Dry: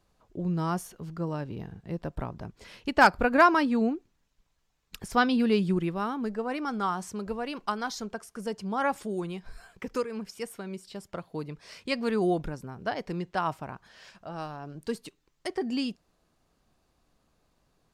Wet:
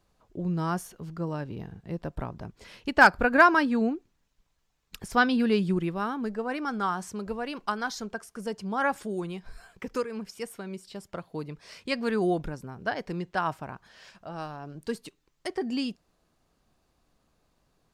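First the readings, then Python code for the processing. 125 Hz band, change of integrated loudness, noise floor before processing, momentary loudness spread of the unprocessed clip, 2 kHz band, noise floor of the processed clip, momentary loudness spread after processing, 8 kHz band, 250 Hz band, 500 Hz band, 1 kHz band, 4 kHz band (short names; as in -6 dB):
0.0 dB, +1.0 dB, -72 dBFS, 18 LU, +4.5 dB, -72 dBFS, 20 LU, 0.0 dB, 0.0 dB, 0.0 dB, +0.5 dB, 0.0 dB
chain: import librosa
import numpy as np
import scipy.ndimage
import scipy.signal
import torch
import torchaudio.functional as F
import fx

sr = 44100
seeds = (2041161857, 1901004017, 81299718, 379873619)

y = fx.dynamic_eq(x, sr, hz=1600.0, q=5.0, threshold_db=-48.0, ratio=4.0, max_db=6)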